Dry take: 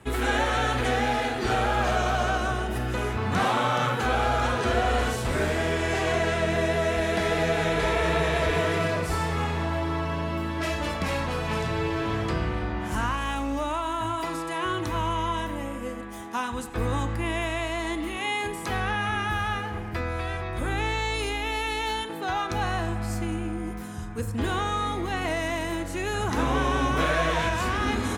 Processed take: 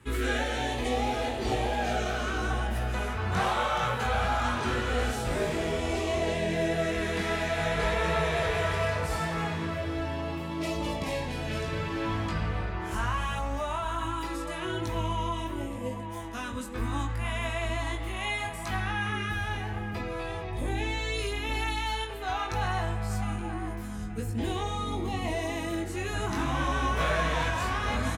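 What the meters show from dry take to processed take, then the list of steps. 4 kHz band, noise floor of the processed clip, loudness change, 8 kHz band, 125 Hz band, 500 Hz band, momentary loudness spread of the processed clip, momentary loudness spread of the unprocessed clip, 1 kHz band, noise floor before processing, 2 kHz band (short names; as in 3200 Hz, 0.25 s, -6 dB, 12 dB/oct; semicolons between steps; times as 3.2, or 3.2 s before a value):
-3.0 dB, -36 dBFS, -3.5 dB, -3.0 dB, -2.5 dB, -4.0 dB, 7 LU, 6 LU, -4.0 dB, -34 dBFS, -4.0 dB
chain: chorus 0.74 Hz, delay 18 ms, depth 3.4 ms; LFO notch sine 0.21 Hz 270–1600 Hz; outdoor echo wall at 150 m, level -8 dB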